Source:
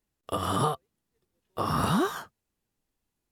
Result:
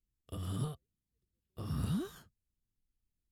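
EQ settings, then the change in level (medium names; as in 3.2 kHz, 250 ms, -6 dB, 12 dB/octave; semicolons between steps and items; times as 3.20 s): amplifier tone stack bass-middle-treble 10-0-1; band-stop 5.7 kHz, Q 15; +8.0 dB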